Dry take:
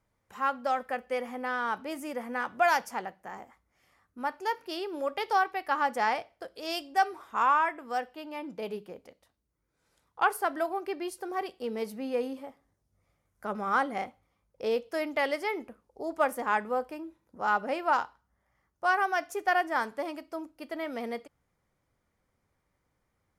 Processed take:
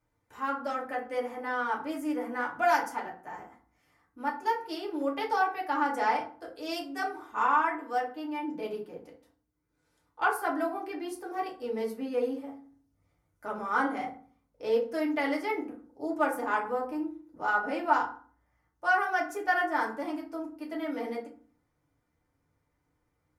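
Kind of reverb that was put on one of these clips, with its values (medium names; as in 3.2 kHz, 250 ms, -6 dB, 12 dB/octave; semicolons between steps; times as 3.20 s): FDN reverb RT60 0.44 s, low-frequency decay 1.4×, high-frequency decay 0.5×, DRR -3.5 dB; trim -6 dB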